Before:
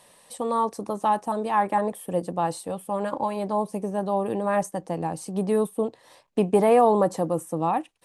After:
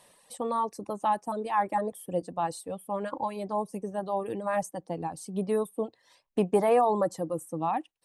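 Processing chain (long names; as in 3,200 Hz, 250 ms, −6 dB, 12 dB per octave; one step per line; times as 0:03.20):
reverb reduction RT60 1.9 s
level −3.5 dB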